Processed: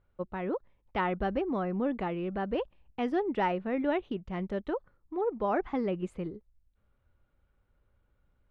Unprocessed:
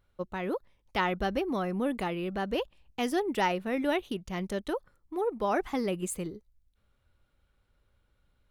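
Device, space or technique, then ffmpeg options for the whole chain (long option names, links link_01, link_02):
phone in a pocket: -af "lowpass=3000,highshelf=frequency=2500:gain=-9"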